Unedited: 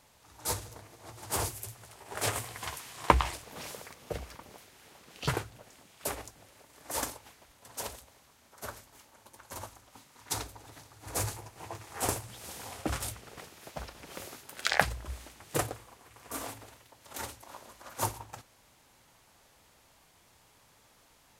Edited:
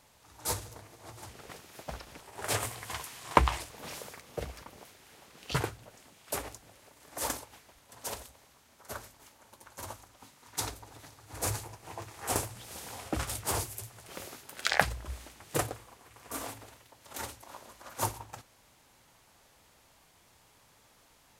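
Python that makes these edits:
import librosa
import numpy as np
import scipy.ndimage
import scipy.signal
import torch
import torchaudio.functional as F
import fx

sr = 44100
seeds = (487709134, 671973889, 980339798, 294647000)

y = fx.edit(x, sr, fx.swap(start_s=1.29, length_s=0.64, other_s=13.17, other_length_s=0.91), tone=tone)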